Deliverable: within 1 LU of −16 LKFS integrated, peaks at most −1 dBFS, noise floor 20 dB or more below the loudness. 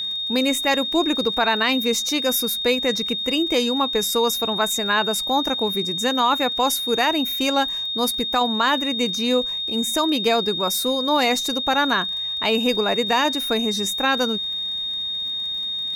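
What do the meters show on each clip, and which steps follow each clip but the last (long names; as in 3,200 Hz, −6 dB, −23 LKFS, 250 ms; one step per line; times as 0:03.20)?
crackle rate 39 per second; interfering tone 3,700 Hz; level of the tone −24 dBFS; integrated loudness −20.5 LKFS; sample peak −8.0 dBFS; target loudness −16.0 LKFS
→ click removal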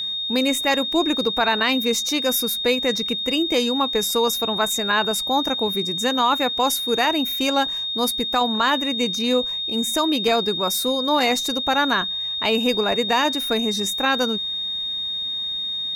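crackle rate 1.2 per second; interfering tone 3,700 Hz; level of the tone −24 dBFS
→ notch filter 3,700 Hz, Q 30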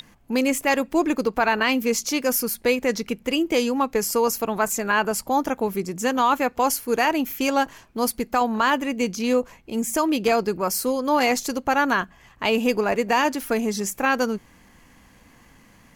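interfering tone none found; integrated loudness −22.5 LKFS; sample peak −8.5 dBFS; target loudness −16.0 LKFS
→ level +6.5 dB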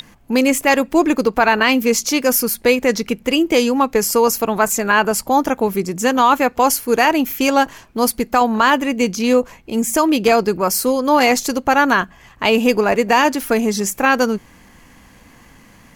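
integrated loudness −16.0 LKFS; sample peak −2.0 dBFS; background noise floor −47 dBFS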